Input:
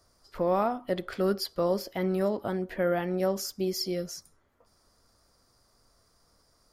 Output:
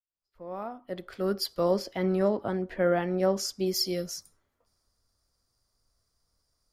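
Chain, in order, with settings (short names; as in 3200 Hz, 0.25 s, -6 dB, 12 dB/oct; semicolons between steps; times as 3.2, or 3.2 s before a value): opening faded in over 1.82 s; 1.71–3.66 LPF 8600 Hz 12 dB/oct; three-band expander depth 40%; gain +1 dB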